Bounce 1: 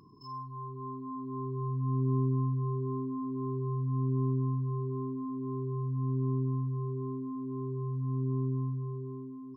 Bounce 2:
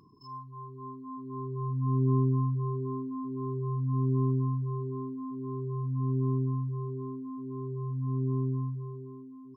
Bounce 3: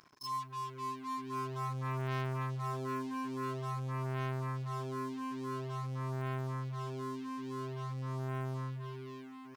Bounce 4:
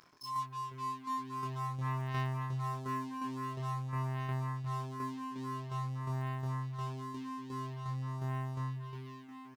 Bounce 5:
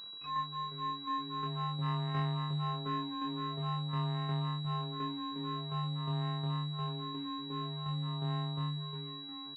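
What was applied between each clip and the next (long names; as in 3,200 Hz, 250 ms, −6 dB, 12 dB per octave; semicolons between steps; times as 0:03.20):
reverb reduction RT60 0.52 s; expander for the loud parts 1.5 to 1, over −42 dBFS; level +5 dB
leveller curve on the samples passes 3; tilt shelving filter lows −8.5 dB, about 850 Hz; level −7.5 dB
shaped tremolo saw down 2.8 Hz, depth 50%; double-tracking delay 24 ms −4 dB
frequency shifter +18 Hz; switching amplifier with a slow clock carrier 3,900 Hz; level +1.5 dB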